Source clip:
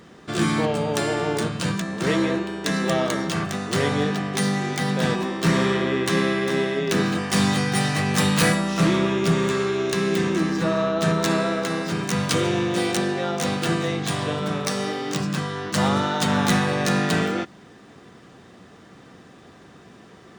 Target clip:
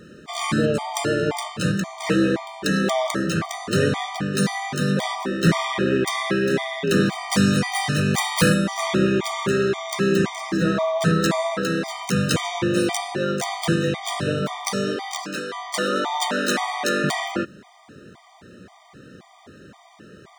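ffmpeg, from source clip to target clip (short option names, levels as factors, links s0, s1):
-filter_complex "[0:a]asettb=1/sr,asplit=3[s0][s1][s2];[s0]atrim=end=14.964[s3];[s1]atrim=start=14.96:end=17.04,asetpts=PTS-STARTPTS,afade=t=in:d=0.004:c=qsin,afade=t=out:st=2.076:d=0.004:c=qsin,highpass=f=280:w=0.5412,highpass=f=280:w=1.3066[s4];[s2]atrim=start=17.036[s5];[s3][s4]acrossfade=d=0.004:c1=hsin:c2=qsin[s6];[s6][s5]acrossfade=d=0.004:c1=qsin:c2=hsin,afftfilt=real='re*gt(sin(2*PI*1.9*pts/sr)*(1-2*mod(floor(b*sr/1024/620),2)),0)':imag='im*gt(sin(2*PI*1.9*pts/sr)*(1-2*mod(floor(b*sr/1024/620),2)),0)':win_size=1024:overlap=0.75,volume=1.5"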